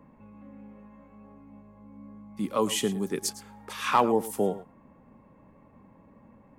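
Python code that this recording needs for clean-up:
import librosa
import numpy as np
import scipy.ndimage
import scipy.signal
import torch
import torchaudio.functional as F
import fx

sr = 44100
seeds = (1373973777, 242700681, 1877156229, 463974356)

y = fx.fix_declip(x, sr, threshold_db=-10.5)
y = fx.fix_echo_inverse(y, sr, delay_ms=109, level_db=-16.0)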